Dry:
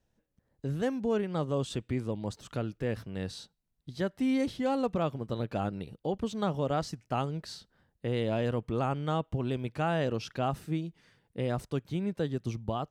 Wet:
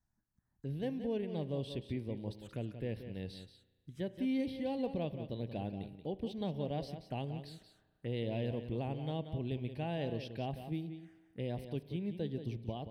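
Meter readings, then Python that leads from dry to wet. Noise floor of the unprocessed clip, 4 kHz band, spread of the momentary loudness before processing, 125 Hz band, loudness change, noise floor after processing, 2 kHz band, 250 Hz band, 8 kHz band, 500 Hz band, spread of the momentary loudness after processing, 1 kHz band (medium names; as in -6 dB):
-78 dBFS, -6.5 dB, 9 LU, -5.5 dB, -7.0 dB, -79 dBFS, -10.5 dB, -6.0 dB, under -15 dB, -7.5 dB, 9 LU, -11.5 dB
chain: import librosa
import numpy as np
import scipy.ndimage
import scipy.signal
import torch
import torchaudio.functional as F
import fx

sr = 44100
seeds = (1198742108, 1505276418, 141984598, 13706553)

y = fx.env_phaser(x, sr, low_hz=490.0, high_hz=1300.0, full_db=-34.0)
y = y + 10.0 ** (-10.0 / 20.0) * np.pad(y, (int(180 * sr / 1000.0), 0))[:len(y)]
y = fx.rev_spring(y, sr, rt60_s=1.5, pass_ms=(34,), chirp_ms=45, drr_db=16.5)
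y = y * librosa.db_to_amplitude(-6.0)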